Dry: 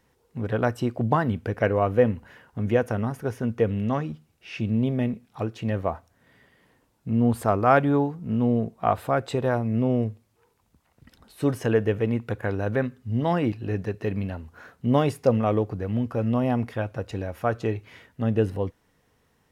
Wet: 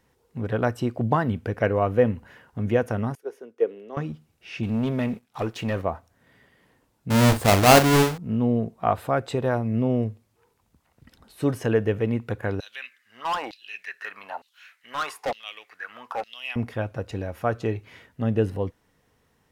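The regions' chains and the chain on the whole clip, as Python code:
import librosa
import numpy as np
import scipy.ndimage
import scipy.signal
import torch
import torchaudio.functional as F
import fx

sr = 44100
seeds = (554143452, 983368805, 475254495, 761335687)

y = fx.chain(x, sr, fx.ladder_highpass(hz=350.0, resonance_pct=60),
    fx.band_widen(depth_pct=70), at=(3.15, 3.97))
y = fx.chain(y, sr, fx.low_shelf(hz=380.0, db=-8.5),
    fx.leveller(passes=2), at=(4.63, 5.82))
y = fx.chain(y, sr, fx.halfwave_hold(),
    fx.doubler(ms=40.0, db=-9.0), at=(7.1, 8.18))
y = fx.chain(y, sr, fx.filter_lfo_highpass(shape='saw_down', hz=1.1, low_hz=730.0, high_hz=4100.0, q=5.6),
    fx.clip_hard(threshold_db=-22.5), at=(12.6, 16.56))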